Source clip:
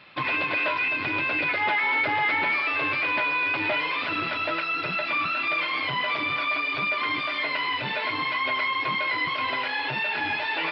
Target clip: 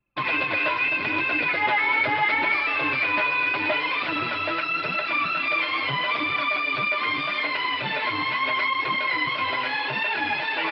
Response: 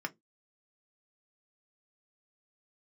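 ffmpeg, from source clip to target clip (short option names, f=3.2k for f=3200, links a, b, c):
-filter_complex "[0:a]asplit=2[a][b];[b]adelay=466.5,volume=-13dB,highshelf=f=4k:g=-10.5[c];[a][c]amix=inputs=2:normalize=0,anlmdn=6.31,flanger=delay=2.1:depth=8.1:regen=44:speed=0.79:shape=triangular,volume=5.5dB"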